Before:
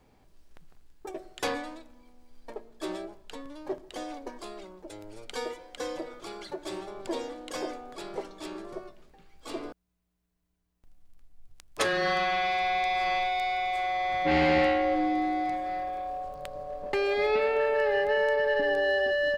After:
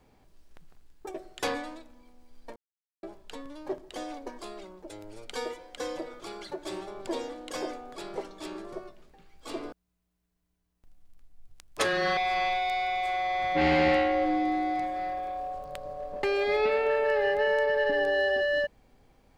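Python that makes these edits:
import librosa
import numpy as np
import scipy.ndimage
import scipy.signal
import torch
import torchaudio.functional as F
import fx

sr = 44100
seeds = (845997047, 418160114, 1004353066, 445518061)

y = fx.edit(x, sr, fx.silence(start_s=2.56, length_s=0.47),
    fx.cut(start_s=12.17, length_s=0.7), tone=tone)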